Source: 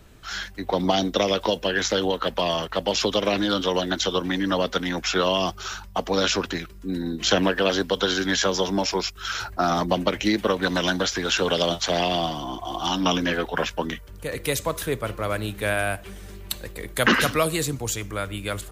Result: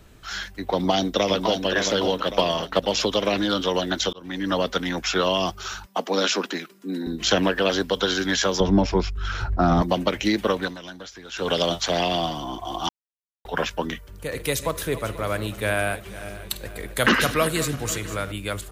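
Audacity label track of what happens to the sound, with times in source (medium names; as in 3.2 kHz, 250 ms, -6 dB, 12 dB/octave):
0.700000	1.650000	echo throw 560 ms, feedback 45%, level -6.5 dB
2.320000	2.830000	transient shaper attack +6 dB, sustain -4 dB
4.130000	4.530000	fade in
5.860000	7.070000	steep high-pass 190 Hz
8.600000	9.820000	RIAA curve playback
10.570000	11.510000	dip -15.5 dB, fades 0.19 s
12.890000	13.450000	mute
14.090000	18.320000	backward echo that repeats 245 ms, feedback 65%, level -14 dB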